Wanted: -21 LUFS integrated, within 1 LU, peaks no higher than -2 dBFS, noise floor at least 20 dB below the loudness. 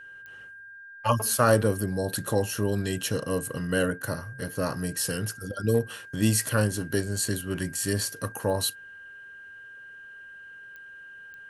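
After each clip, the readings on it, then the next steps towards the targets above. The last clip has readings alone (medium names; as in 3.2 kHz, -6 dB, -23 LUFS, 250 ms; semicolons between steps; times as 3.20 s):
clicks found 4; steady tone 1.6 kHz; tone level -43 dBFS; loudness -27.5 LUFS; peak level -7.0 dBFS; loudness target -21.0 LUFS
-> de-click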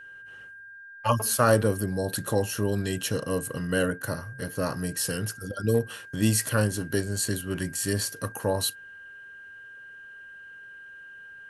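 clicks found 0; steady tone 1.6 kHz; tone level -43 dBFS
-> band-stop 1.6 kHz, Q 30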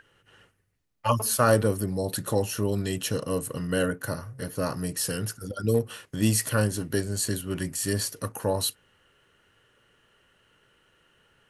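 steady tone not found; loudness -27.5 LUFS; peak level -7.5 dBFS; loudness target -21.0 LUFS
-> trim +6.5 dB; peak limiter -2 dBFS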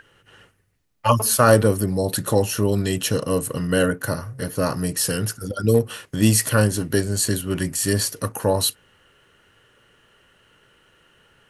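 loudness -21.0 LUFS; peak level -2.0 dBFS; noise floor -60 dBFS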